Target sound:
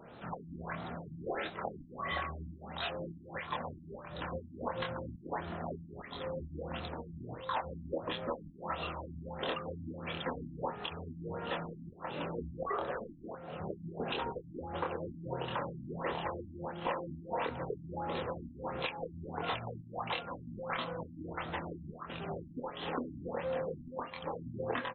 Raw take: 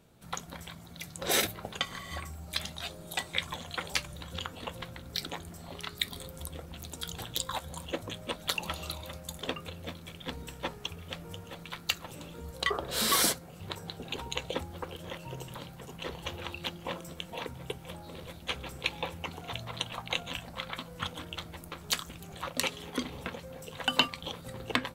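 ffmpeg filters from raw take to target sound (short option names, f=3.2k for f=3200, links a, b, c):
-filter_complex "[0:a]bandreject=f=2.2k:w=17,asplit=2[a][b];[b]adelay=25,volume=-4dB[c];[a][c]amix=inputs=2:normalize=0,acompressor=threshold=-40dB:ratio=6,asplit=2[d][e];[e]highpass=f=720:p=1,volume=21dB,asoftclip=type=tanh:threshold=-20dB[f];[d][f]amix=inputs=2:normalize=0,lowpass=f=1.5k:p=1,volume=-6dB,afftfilt=real='re*lt(b*sr/1024,300*pow(4300/300,0.5+0.5*sin(2*PI*1.5*pts/sr)))':imag='im*lt(b*sr/1024,300*pow(4300/300,0.5+0.5*sin(2*PI*1.5*pts/sr)))':win_size=1024:overlap=0.75,volume=1dB"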